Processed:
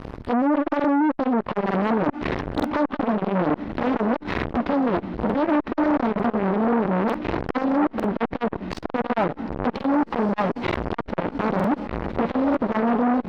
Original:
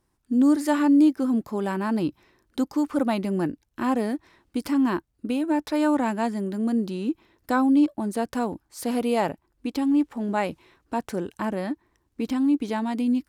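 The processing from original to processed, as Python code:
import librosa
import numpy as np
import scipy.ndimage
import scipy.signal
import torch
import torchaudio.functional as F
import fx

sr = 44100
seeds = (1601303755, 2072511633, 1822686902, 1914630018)

p1 = fx.env_lowpass_down(x, sr, base_hz=1100.0, full_db=-20.5)
p2 = fx.low_shelf(p1, sr, hz=290.0, db=8.5)
p3 = fx.rider(p2, sr, range_db=4, speed_s=0.5)
p4 = p2 + (p3 * librosa.db_to_amplitude(0.0))
p5 = fx.gate_flip(p4, sr, shuts_db=-21.0, range_db=-30)
p6 = fx.fuzz(p5, sr, gain_db=53.0, gate_db=-59.0)
p7 = fx.air_absorb(p6, sr, metres=320.0)
p8 = fx.doubler(p7, sr, ms=17.0, db=-13.5)
p9 = fx.echo_diffused(p8, sr, ms=1601, feedback_pct=57, wet_db=-14.0)
p10 = fx.buffer_crackle(p9, sr, first_s=0.75, period_s=0.9, block=2048, kind='repeat')
y = fx.transformer_sat(p10, sr, knee_hz=860.0)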